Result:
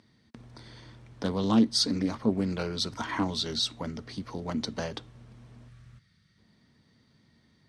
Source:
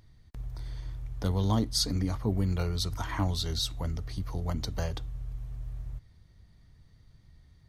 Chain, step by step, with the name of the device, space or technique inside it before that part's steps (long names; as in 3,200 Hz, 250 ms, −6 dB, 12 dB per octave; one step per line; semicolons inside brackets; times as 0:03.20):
full-range speaker at full volume (highs frequency-modulated by the lows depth 0.29 ms; loudspeaker in its box 220–8,600 Hz, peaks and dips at 230 Hz +9 dB, 730 Hz −4 dB, 6,900 Hz −6 dB)
notch filter 1,200 Hz, Q 22
gain on a spectral selection 0:05.68–0:06.38, 210–1,100 Hz −11 dB
level +4 dB